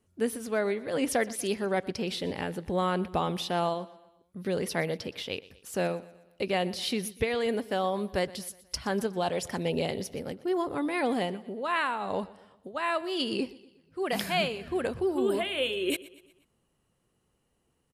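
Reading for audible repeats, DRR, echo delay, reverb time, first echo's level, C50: 3, no reverb audible, 121 ms, no reverb audible, −19.5 dB, no reverb audible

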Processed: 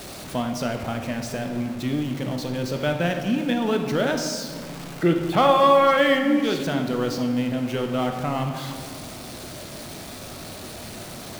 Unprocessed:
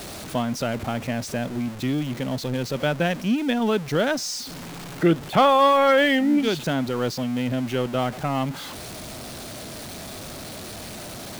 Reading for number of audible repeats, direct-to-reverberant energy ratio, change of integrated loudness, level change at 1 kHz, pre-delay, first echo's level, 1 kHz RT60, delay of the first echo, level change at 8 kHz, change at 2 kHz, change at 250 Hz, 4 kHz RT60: no echo audible, 4.0 dB, 0.0 dB, 0.0 dB, 15 ms, no echo audible, 1.7 s, no echo audible, −1.5 dB, −1.0 dB, 0.0 dB, 1.0 s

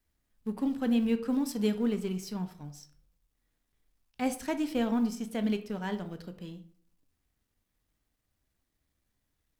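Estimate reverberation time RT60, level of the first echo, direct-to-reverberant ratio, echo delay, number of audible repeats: 0.55 s, no echo audible, 9.0 dB, no echo audible, no echo audible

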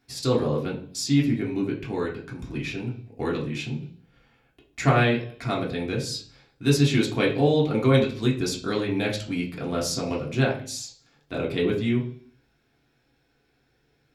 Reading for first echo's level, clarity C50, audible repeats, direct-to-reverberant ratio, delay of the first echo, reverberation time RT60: no echo audible, 9.0 dB, no echo audible, −3.5 dB, no echo audible, 0.50 s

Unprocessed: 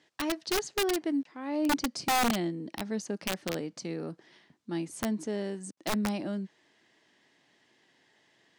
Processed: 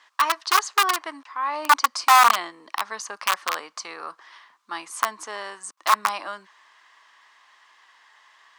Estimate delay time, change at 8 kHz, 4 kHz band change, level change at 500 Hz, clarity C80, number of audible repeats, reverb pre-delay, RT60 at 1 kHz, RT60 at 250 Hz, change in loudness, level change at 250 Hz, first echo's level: no echo audible, +8.0 dB, +9.0 dB, −3.5 dB, no reverb audible, no echo audible, no reverb audible, no reverb audible, no reverb audible, +10.0 dB, −15.0 dB, no echo audible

